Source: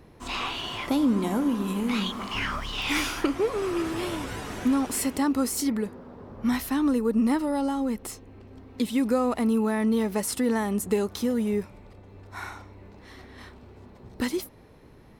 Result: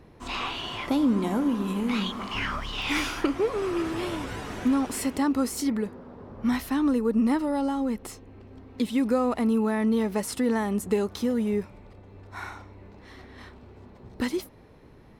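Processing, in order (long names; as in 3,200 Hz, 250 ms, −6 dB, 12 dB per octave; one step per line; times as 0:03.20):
high-shelf EQ 6,800 Hz −7 dB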